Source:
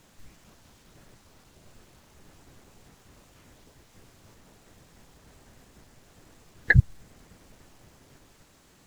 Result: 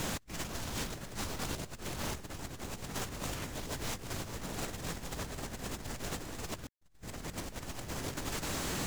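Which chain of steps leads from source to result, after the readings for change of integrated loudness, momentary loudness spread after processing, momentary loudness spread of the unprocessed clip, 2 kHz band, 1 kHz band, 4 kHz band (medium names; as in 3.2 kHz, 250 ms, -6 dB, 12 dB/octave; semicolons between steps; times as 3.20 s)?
-17.0 dB, 5 LU, 0 LU, -11.0 dB, +12.0 dB, +14.0 dB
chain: compressor with a negative ratio -58 dBFS, ratio -0.5; trim +9 dB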